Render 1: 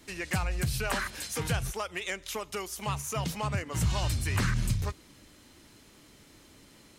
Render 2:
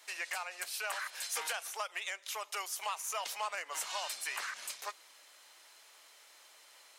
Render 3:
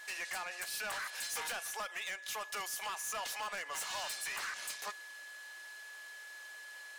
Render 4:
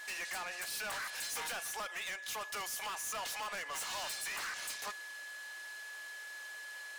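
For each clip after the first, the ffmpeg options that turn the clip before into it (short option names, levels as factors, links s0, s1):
-af "highpass=f=640:w=0.5412,highpass=f=640:w=1.3066,alimiter=level_in=1.19:limit=0.0631:level=0:latency=1:release=452,volume=0.841"
-af "asoftclip=type=tanh:threshold=0.0119,aeval=exprs='val(0)+0.00282*sin(2*PI*1700*n/s)':c=same,volume=1.41"
-af "asoftclip=type=tanh:threshold=0.01,volume=1.5"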